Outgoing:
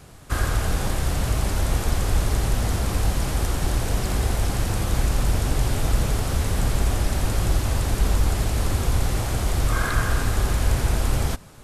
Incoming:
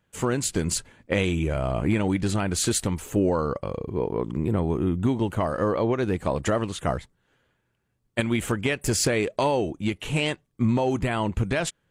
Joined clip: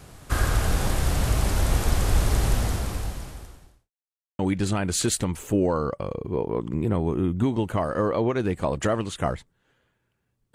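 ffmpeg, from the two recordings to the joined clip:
ffmpeg -i cue0.wav -i cue1.wav -filter_complex "[0:a]apad=whole_dur=10.54,atrim=end=10.54,asplit=2[link_01][link_02];[link_01]atrim=end=3.91,asetpts=PTS-STARTPTS,afade=type=out:start_time=2.52:duration=1.39:curve=qua[link_03];[link_02]atrim=start=3.91:end=4.39,asetpts=PTS-STARTPTS,volume=0[link_04];[1:a]atrim=start=2.02:end=8.17,asetpts=PTS-STARTPTS,afade=type=in:duration=0.004:curve=hsin[link_05];[link_03][link_04][link_05]concat=n=3:v=0:a=1" out.wav

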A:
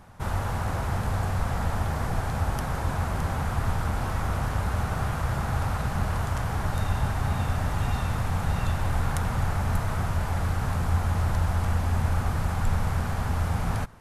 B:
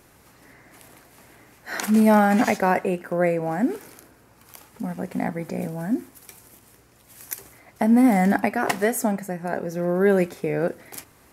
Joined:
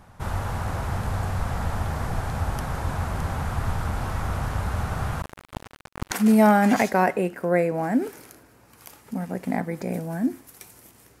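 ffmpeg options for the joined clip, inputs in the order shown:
ffmpeg -i cue0.wav -i cue1.wav -filter_complex "[0:a]asettb=1/sr,asplit=3[link_01][link_02][link_03];[link_01]atrim=end=5.224[link_04];[link_02]atrim=start=5.22:end=6.11,asetpts=PTS-STARTPTS,afade=type=in:duration=0.004:curve=qsin,afade=type=out:start_time=0.886:duration=0.004:curve=qsin,acrusher=bits=2:mix=0:aa=0.5[link_05];[link_03]atrim=start=6.106[link_06];[link_04][link_05]acrossfade=duration=0.004:curve1=hsin:curve2=qsin[link_07];[link_07][link_06]acrossfade=duration=0.004:curve1=qsin:curve2=hsin,apad=whole_dur=11.2,atrim=end=11.2,atrim=end=6.112[link_08];[1:a]atrim=start=1.788:end=6.88[link_09];[link_08][link_09]acrossfade=duration=0.004:curve1=hsin:curve2=hsin" out.wav

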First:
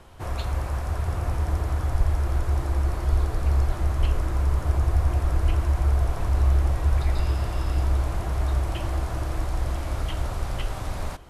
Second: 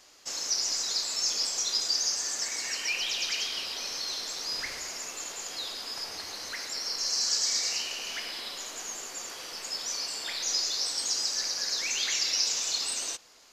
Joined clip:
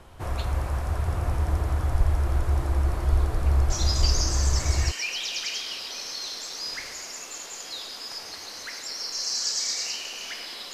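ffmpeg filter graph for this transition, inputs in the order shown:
ffmpeg -i cue0.wav -i cue1.wav -filter_complex "[0:a]apad=whole_dur=10.73,atrim=end=10.73,atrim=end=4.92,asetpts=PTS-STARTPTS[link_01];[1:a]atrim=start=1.56:end=8.59,asetpts=PTS-STARTPTS[link_02];[link_01][link_02]acrossfade=duration=1.22:curve1=log:curve2=log" out.wav

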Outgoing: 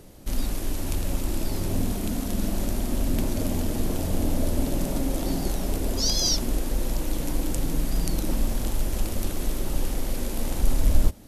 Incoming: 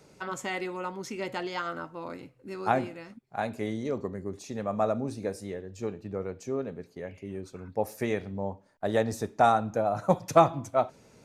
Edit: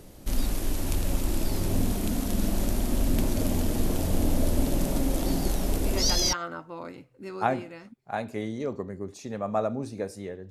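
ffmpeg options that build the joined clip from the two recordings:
ffmpeg -i cue0.wav -i cue1.wav -filter_complex "[0:a]apad=whole_dur=10.5,atrim=end=10.5,atrim=end=6.33,asetpts=PTS-STARTPTS[link_01];[1:a]atrim=start=1.1:end=5.75,asetpts=PTS-STARTPTS[link_02];[link_01][link_02]acrossfade=duration=0.48:curve1=log:curve2=log" out.wav

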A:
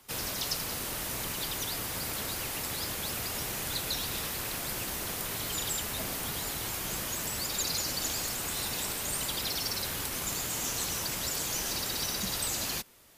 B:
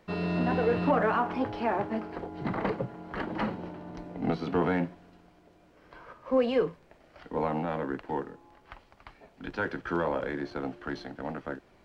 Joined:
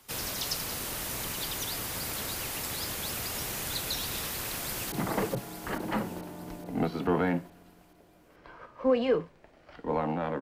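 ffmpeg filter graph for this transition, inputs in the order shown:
ffmpeg -i cue0.wav -i cue1.wav -filter_complex "[0:a]apad=whole_dur=10.41,atrim=end=10.41,atrim=end=4.922[link_01];[1:a]atrim=start=2.388:end=7.88[link_02];[link_01][link_02]acrossfade=duration=0.004:curve1=hsin:curve2=hsin,asplit=2[link_03][link_04];[link_04]afade=type=in:start_time=4.5:duration=0.01,afade=type=out:start_time=4.92:duration=0.01,aecho=0:1:430|860|1290|1720|2150|2580|3010|3440:0.473151|0.283891|0.170334|0.102201|0.0613204|0.0367922|0.0220753|0.0132452[link_05];[link_03][link_05]amix=inputs=2:normalize=0" out.wav

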